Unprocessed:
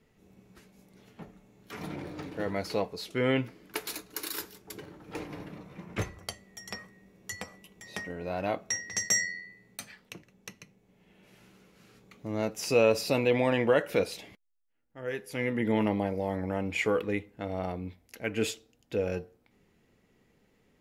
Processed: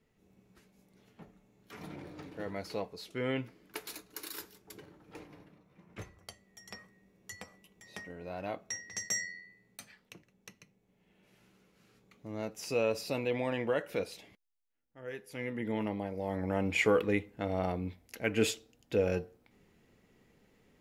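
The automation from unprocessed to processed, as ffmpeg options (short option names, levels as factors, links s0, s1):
-af "volume=3.98,afade=t=out:st=4.77:d=0.84:silence=0.281838,afade=t=in:st=5.61:d=1.17:silence=0.298538,afade=t=in:st=16.11:d=0.55:silence=0.375837"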